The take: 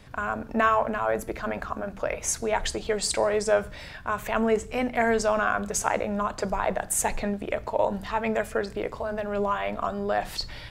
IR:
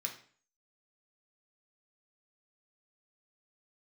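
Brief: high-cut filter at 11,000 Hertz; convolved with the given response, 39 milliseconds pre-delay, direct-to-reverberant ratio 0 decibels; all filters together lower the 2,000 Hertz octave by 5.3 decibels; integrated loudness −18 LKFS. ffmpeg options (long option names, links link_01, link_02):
-filter_complex "[0:a]lowpass=11000,equalizer=frequency=2000:width_type=o:gain=-7.5,asplit=2[link_01][link_02];[1:a]atrim=start_sample=2205,adelay=39[link_03];[link_02][link_03]afir=irnorm=-1:irlink=0,volume=0dB[link_04];[link_01][link_04]amix=inputs=2:normalize=0,volume=8dB"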